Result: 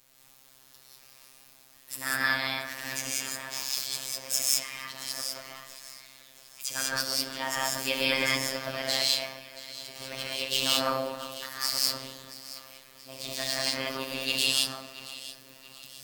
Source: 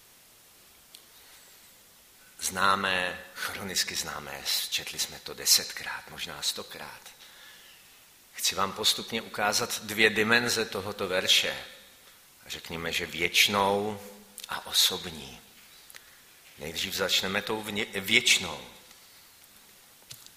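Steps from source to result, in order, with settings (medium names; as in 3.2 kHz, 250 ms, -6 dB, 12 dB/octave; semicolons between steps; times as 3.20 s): treble shelf 12 kHz +5 dB; tape speed +27%; echo whose repeats swap between lows and highs 339 ms, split 1.8 kHz, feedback 66%, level -12.5 dB; gated-style reverb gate 220 ms rising, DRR -5 dB; robot voice 133 Hz; trim -6.5 dB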